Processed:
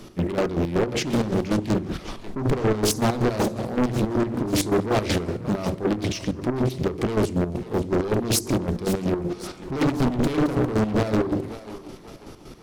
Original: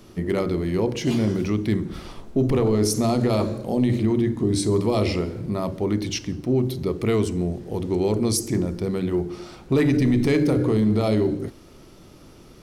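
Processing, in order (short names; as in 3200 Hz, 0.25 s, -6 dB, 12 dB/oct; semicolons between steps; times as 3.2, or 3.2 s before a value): notches 50/100 Hz; in parallel at -7 dB: sine folder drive 9 dB, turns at -11 dBFS; on the sum: chopper 5.3 Hz, depth 65%, duty 45%; on a send: thinning echo 0.541 s, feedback 47%, high-pass 420 Hz, level -13 dB; on the sum: Doppler distortion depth 0.92 ms; gain -3.5 dB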